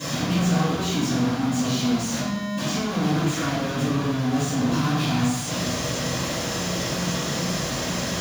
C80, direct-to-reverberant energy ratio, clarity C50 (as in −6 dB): 2.5 dB, −19.0 dB, −1.0 dB